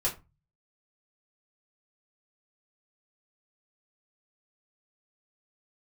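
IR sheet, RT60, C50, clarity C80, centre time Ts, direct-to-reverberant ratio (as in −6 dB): 0.25 s, 13.0 dB, 19.5 dB, 18 ms, −5.5 dB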